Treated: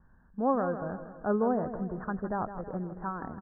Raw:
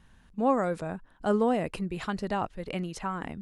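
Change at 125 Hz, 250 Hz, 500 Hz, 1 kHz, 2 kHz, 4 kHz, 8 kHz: −2.0 dB, −2.0 dB, −2.0 dB, −2.0 dB, −4.5 dB, below −40 dB, below −30 dB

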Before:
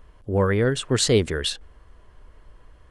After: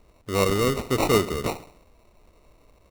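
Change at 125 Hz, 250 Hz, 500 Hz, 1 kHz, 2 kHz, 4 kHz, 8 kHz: −5.0, −1.5, −1.0, +6.0, −1.5, −5.5, −5.0 decibels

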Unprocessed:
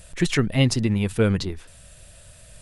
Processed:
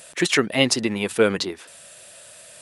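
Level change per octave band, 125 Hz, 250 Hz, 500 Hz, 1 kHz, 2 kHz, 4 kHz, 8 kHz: −11.0, −1.5, +4.5, +6.0, +6.0, +6.0, +6.0 decibels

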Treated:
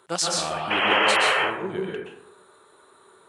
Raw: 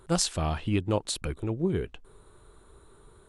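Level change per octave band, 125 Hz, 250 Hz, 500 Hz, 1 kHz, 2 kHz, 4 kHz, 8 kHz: −10.5, −3.0, +5.0, +13.5, +20.5, +11.0, +4.0 decibels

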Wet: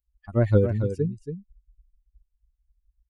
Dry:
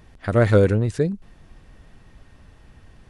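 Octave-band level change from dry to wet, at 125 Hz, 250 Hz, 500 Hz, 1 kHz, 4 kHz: −3.0 dB, −4.0 dB, −6.0 dB, −10.5 dB, below −10 dB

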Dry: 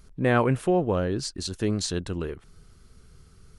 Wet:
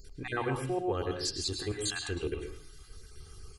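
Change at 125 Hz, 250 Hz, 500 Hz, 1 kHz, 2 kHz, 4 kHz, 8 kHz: −10.0, −10.5, −8.0, −8.0, −6.0, −0.5, −2.0 decibels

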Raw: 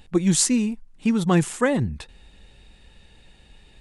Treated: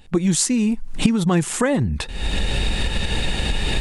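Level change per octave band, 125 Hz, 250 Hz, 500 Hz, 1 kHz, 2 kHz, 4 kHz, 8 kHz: +4.0, +2.5, +1.5, +2.5, +5.5, +8.5, +1.5 decibels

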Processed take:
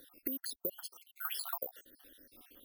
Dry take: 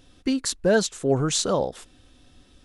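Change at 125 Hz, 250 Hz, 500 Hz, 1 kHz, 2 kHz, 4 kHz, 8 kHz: below −35 dB, −23.5 dB, −26.0 dB, −16.0 dB, −18.5 dB, −16.5 dB, −19.5 dB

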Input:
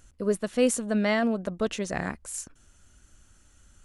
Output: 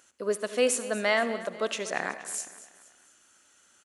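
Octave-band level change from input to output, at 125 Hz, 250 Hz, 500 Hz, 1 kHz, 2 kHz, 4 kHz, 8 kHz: −12.0, −9.5, −0.5, +1.5, +3.0, +3.0, +1.5 decibels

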